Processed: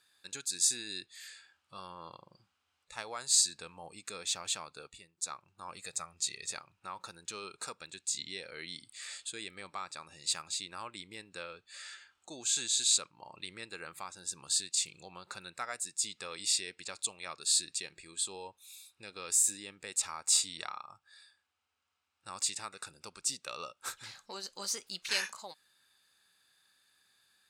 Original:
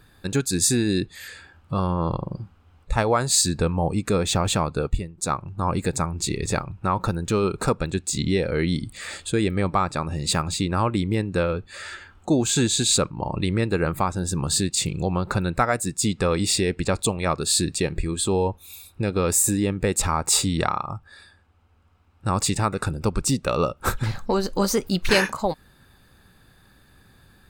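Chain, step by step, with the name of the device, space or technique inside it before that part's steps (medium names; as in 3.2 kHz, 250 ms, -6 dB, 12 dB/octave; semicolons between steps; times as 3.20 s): 5.76–6.51 s: comb 1.6 ms, depth 46%; harmonic-percussive split percussive -3 dB; piezo pickup straight into a mixer (low-pass 6.9 kHz 12 dB/octave; differentiator)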